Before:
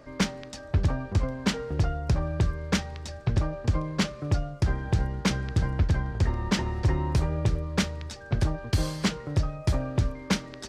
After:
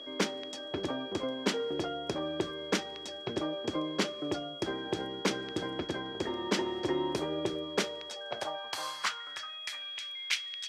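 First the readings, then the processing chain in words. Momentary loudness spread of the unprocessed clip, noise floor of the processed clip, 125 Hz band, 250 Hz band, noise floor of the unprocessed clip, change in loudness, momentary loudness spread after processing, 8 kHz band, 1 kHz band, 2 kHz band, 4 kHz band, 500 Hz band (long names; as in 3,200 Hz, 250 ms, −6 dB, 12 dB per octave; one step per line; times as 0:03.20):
3 LU, −43 dBFS, −20.5 dB, −5.0 dB, −43 dBFS, −6.0 dB, 6 LU, −3.5 dB, −2.0 dB, −2.0 dB, +2.0 dB, +1.0 dB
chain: steady tone 3,300 Hz −40 dBFS
high-pass filter sweep 340 Hz → 2,400 Hz, 0:07.66–0:09.88
level −3.5 dB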